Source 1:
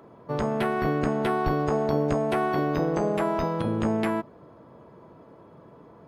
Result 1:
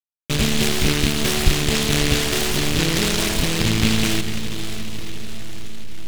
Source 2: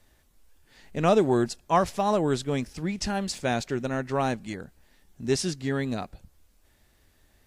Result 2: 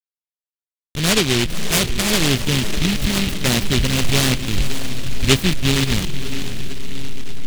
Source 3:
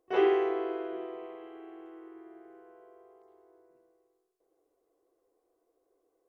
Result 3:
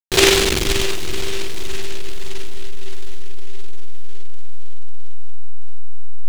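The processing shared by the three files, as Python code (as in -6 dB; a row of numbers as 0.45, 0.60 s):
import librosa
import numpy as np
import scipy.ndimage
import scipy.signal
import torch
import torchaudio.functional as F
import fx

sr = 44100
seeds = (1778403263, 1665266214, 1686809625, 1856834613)

y = fx.delta_hold(x, sr, step_db=-27.5)
y = fx.lowpass(y, sr, hz=2300.0, slope=6)
y = fx.low_shelf(y, sr, hz=70.0, db=10.5)
y = fx.rider(y, sr, range_db=3, speed_s=2.0)
y = fx.low_shelf(y, sr, hz=360.0, db=6.0)
y = fx.echo_diffused(y, sr, ms=549, feedback_pct=61, wet_db=-10.0)
y = fx.noise_mod_delay(y, sr, seeds[0], noise_hz=2900.0, depth_ms=0.37)
y = librosa.util.normalize(y) * 10.0 ** (-3 / 20.0)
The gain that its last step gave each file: +2.0, +3.5, +10.0 dB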